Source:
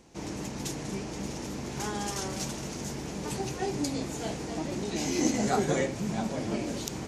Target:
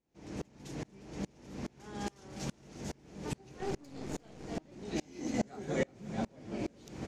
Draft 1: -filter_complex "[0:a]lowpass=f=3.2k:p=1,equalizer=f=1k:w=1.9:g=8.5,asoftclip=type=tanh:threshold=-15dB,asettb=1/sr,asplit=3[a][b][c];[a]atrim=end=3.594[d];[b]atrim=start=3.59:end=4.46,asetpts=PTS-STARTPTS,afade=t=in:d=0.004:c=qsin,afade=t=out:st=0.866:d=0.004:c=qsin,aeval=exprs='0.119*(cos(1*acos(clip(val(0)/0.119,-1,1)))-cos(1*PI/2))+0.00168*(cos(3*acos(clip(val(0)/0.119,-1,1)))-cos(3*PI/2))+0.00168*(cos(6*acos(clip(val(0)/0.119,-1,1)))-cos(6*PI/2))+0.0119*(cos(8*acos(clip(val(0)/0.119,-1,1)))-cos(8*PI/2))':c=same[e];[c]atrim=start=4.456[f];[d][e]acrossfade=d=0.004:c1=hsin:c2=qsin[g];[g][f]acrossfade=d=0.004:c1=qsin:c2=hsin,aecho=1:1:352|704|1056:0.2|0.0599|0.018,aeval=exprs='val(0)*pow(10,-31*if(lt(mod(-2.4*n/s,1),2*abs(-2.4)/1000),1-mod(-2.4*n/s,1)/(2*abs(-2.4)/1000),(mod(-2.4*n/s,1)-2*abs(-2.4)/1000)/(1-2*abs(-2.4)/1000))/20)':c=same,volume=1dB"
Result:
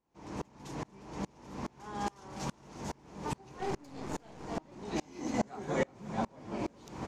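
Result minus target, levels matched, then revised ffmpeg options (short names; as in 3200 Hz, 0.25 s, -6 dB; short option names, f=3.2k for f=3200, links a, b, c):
1000 Hz band +5.5 dB
-filter_complex "[0:a]lowpass=f=3.2k:p=1,equalizer=f=1k:w=1.9:g=-3.5,asoftclip=type=tanh:threshold=-15dB,asettb=1/sr,asplit=3[a][b][c];[a]atrim=end=3.594[d];[b]atrim=start=3.59:end=4.46,asetpts=PTS-STARTPTS,afade=t=in:d=0.004:c=qsin,afade=t=out:st=0.866:d=0.004:c=qsin,aeval=exprs='0.119*(cos(1*acos(clip(val(0)/0.119,-1,1)))-cos(1*PI/2))+0.00168*(cos(3*acos(clip(val(0)/0.119,-1,1)))-cos(3*PI/2))+0.00168*(cos(6*acos(clip(val(0)/0.119,-1,1)))-cos(6*PI/2))+0.0119*(cos(8*acos(clip(val(0)/0.119,-1,1)))-cos(8*PI/2))':c=same[e];[c]atrim=start=4.456[f];[d][e]acrossfade=d=0.004:c1=hsin:c2=qsin[g];[g][f]acrossfade=d=0.004:c1=qsin:c2=hsin,aecho=1:1:352|704|1056:0.2|0.0599|0.018,aeval=exprs='val(0)*pow(10,-31*if(lt(mod(-2.4*n/s,1),2*abs(-2.4)/1000),1-mod(-2.4*n/s,1)/(2*abs(-2.4)/1000),(mod(-2.4*n/s,1)-2*abs(-2.4)/1000)/(1-2*abs(-2.4)/1000))/20)':c=same,volume=1dB"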